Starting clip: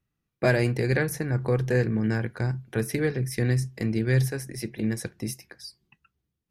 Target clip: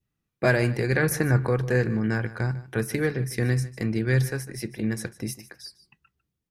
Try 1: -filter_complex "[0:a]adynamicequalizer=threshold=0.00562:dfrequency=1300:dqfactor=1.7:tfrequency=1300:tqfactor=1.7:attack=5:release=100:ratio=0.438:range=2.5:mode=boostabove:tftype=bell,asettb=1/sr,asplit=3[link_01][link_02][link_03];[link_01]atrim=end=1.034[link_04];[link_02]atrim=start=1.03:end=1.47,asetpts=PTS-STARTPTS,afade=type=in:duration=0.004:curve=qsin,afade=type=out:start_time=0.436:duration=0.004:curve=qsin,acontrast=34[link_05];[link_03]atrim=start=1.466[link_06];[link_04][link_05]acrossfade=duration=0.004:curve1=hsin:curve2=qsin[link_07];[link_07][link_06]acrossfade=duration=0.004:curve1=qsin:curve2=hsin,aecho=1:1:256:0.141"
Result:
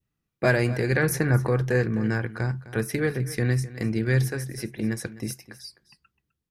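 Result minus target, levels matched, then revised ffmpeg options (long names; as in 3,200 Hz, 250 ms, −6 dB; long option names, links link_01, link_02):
echo 106 ms late
-filter_complex "[0:a]adynamicequalizer=threshold=0.00562:dfrequency=1300:dqfactor=1.7:tfrequency=1300:tqfactor=1.7:attack=5:release=100:ratio=0.438:range=2.5:mode=boostabove:tftype=bell,asettb=1/sr,asplit=3[link_01][link_02][link_03];[link_01]atrim=end=1.034[link_04];[link_02]atrim=start=1.03:end=1.47,asetpts=PTS-STARTPTS,afade=type=in:duration=0.004:curve=qsin,afade=type=out:start_time=0.436:duration=0.004:curve=qsin,acontrast=34[link_05];[link_03]atrim=start=1.466[link_06];[link_04][link_05]acrossfade=duration=0.004:curve1=hsin:curve2=qsin[link_07];[link_07][link_06]acrossfade=duration=0.004:curve1=qsin:curve2=hsin,aecho=1:1:150:0.141"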